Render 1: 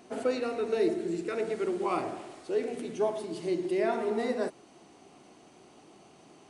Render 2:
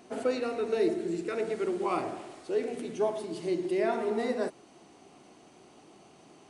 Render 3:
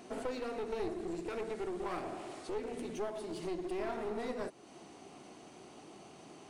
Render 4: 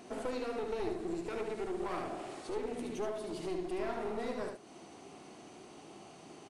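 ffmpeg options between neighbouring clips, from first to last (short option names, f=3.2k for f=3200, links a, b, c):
-af anull
-af "acompressor=threshold=-42dB:ratio=2,aeval=exprs='clip(val(0),-1,0.00794)':c=same,volume=2dB"
-af "aecho=1:1:74:0.531,aresample=32000,aresample=44100"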